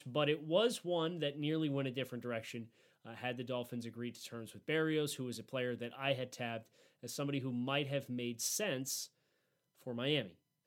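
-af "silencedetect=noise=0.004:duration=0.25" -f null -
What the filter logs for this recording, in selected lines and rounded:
silence_start: 2.65
silence_end: 3.06 | silence_duration: 0.41
silence_start: 6.60
silence_end: 7.03 | silence_duration: 0.43
silence_start: 9.06
silence_end: 9.81 | silence_duration: 0.76
silence_start: 10.29
silence_end: 10.67 | silence_duration: 0.37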